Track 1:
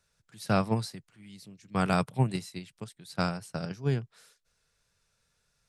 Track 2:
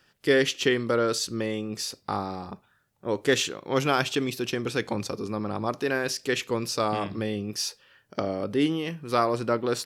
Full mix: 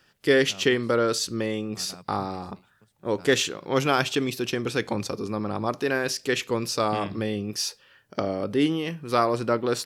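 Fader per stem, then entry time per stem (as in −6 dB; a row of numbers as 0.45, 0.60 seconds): −19.5, +1.5 decibels; 0.00, 0.00 seconds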